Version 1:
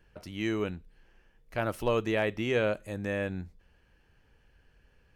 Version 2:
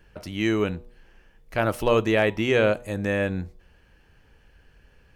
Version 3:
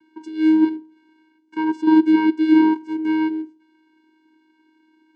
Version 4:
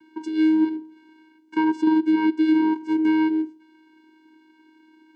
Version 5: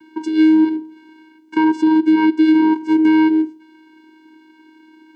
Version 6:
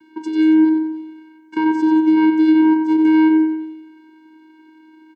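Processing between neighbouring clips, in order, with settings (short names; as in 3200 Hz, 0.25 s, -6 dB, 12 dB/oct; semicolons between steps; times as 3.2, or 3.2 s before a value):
de-hum 121.1 Hz, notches 10; gain +7.5 dB
vocoder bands 8, square 315 Hz; gain +7 dB
compressor 6:1, threshold -21 dBFS, peak gain reduction 11.5 dB; gain +4.5 dB
maximiser +13 dB; gain -5.5 dB
feedback echo 92 ms, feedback 53%, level -8 dB; gain -4 dB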